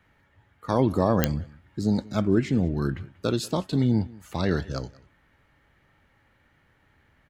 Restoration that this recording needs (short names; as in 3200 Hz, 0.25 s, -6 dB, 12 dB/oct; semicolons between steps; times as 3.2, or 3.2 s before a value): de-click; inverse comb 0.187 s -22.5 dB